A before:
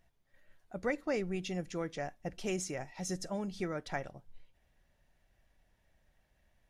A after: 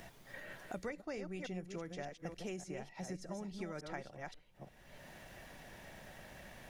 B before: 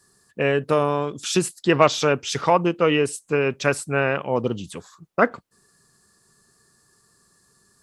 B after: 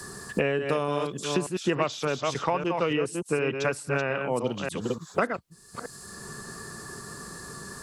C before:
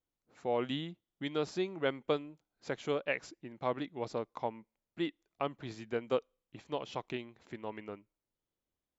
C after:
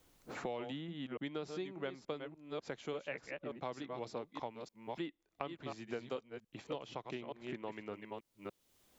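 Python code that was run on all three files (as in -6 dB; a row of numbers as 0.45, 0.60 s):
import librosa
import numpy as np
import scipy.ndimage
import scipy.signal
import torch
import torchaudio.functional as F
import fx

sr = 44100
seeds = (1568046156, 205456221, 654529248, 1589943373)

y = fx.reverse_delay(x, sr, ms=293, wet_db=-7)
y = fx.band_squash(y, sr, depth_pct=100)
y = F.gain(torch.from_numpy(y), -7.5).numpy()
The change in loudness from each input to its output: -8.5, -7.0, -7.0 LU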